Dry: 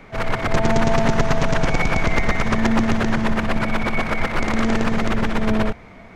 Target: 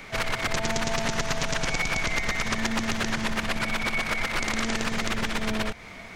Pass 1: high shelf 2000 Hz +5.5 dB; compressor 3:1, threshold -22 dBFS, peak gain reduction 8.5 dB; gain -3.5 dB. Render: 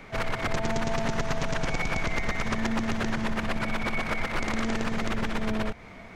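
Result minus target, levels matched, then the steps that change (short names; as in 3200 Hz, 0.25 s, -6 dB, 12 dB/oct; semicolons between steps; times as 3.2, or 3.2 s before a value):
4000 Hz band -4.5 dB
change: high shelf 2000 Hz +17 dB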